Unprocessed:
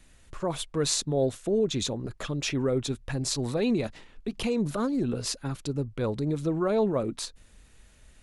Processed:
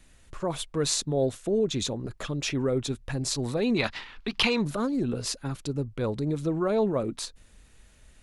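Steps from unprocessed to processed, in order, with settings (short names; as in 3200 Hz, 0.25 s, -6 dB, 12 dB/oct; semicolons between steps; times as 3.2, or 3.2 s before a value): 3.76–4.65 band shelf 2100 Hz +13 dB 3 oct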